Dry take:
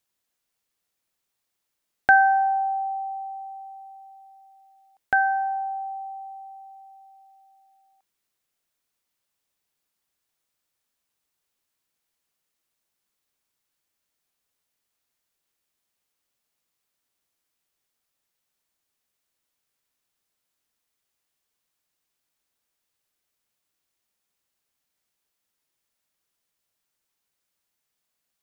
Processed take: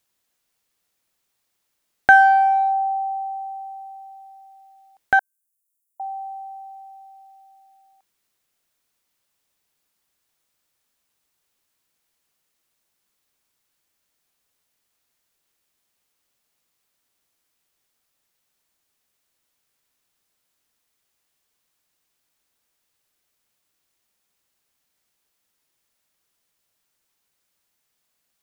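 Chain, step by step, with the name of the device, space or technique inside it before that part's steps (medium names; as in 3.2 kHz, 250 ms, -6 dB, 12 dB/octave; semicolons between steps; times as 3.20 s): 5.19–6.00 s: inverse Chebyshev high-pass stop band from 2 kHz, stop band 70 dB; parallel distortion (in parallel at -13.5 dB: hard clipper -23 dBFS, distortion -5 dB); on the sum: trim +4 dB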